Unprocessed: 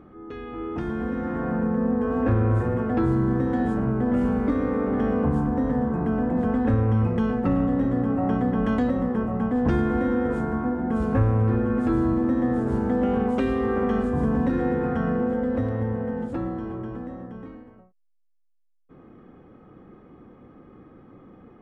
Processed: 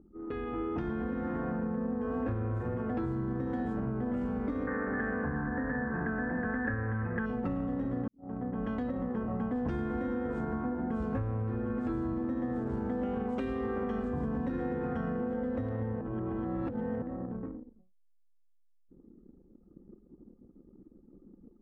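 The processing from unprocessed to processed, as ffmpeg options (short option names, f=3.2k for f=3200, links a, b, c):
-filter_complex "[0:a]asettb=1/sr,asplit=3[a][b][c];[a]atrim=end=4.674[d];[b]atrim=start=4.67:end=7.26,asetpts=PTS-STARTPTS,afade=t=in:d=0.004:c=qsin,afade=t=out:st=2.586:d=0.004:c=qsin,lowpass=f=1.7k:t=q:w=15[e];[c]atrim=start=7.256[f];[d][e]acrossfade=d=0.004:c1=hsin:c2=qsin[g];[g][f]acrossfade=d=0.004:c1=qsin:c2=hsin,asplit=4[h][i][j][k];[h]atrim=end=8.08,asetpts=PTS-STARTPTS,afade=t=out:st=8.076:d=0.004:c=hsin[l];[i]atrim=start=8.08:end=16.012,asetpts=PTS-STARTPTS,afade=t=in:d=1.47[m];[j]atrim=start=16.008:end=17.022,asetpts=PTS-STARTPTS,areverse[n];[k]atrim=start=17.018[o];[l][m]concat=n=2:v=0:a=1[p];[p][n]acrossfade=d=0.004:c1=hsin:c2=hsin[q];[q][o]acrossfade=d=0.004:c1=hsin:c2=hsin,anlmdn=0.631,acompressor=threshold=-32dB:ratio=6,volume=1dB"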